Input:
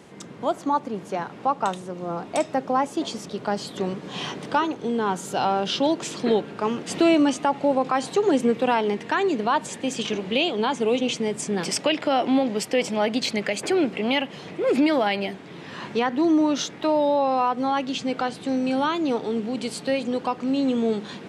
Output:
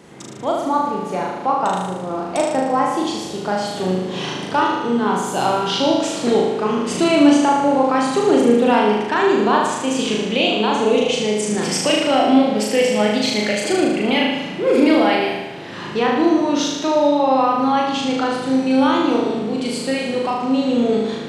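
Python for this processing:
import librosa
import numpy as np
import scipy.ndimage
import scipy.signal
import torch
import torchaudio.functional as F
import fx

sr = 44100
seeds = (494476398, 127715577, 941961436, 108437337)

y = fx.room_flutter(x, sr, wall_m=6.5, rt60_s=1.1)
y = y * librosa.db_to_amplitude(2.0)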